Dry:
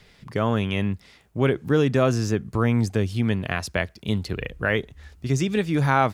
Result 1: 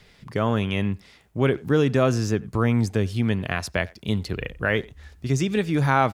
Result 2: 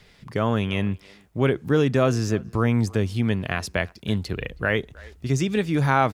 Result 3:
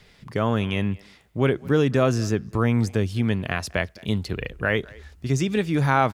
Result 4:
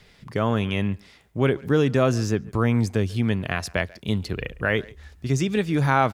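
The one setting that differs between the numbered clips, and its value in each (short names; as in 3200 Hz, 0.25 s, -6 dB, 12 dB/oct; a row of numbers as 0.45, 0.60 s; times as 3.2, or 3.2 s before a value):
speakerphone echo, time: 90, 320, 210, 140 ms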